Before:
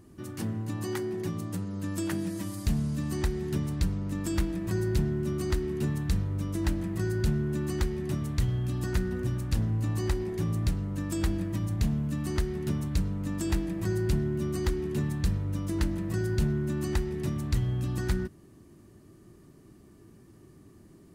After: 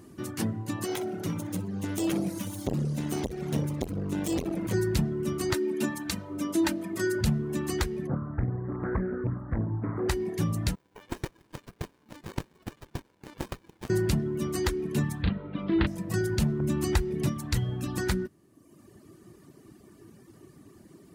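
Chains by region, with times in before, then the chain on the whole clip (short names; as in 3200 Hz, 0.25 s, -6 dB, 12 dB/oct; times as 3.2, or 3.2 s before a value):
0.85–4.74 minimum comb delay 0.32 ms + feedback echo 61 ms, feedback 34%, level -10 dB + core saturation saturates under 340 Hz
5.53–7.21 HPF 180 Hz + comb 3.3 ms
8.07–10.09 elliptic low-pass 1600 Hz + Doppler distortion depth 0.64 ms
10.75–13.9 HPF 680 Hz 24 dB/oct + tilt +3 dB/oct + running maximum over 65 samples
15.22–15.87 steep low-pass 3800 Hz 48 dB/oct + doubler 36 ms -3 dB
16.6–17.28 low shelf 150 Hz +6.5 dB + upward compressor, threshold -26 dBFS + notch 1800 Hz, Q 24
whole clip: reverb removal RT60 1.1 s; HPF 160 Hz 6 dB/oct; gain +6.5 dB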